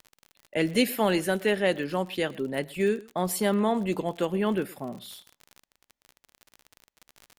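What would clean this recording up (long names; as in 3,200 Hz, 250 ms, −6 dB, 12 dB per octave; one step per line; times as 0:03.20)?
click removal
echo removal 119 ms −22.5 dB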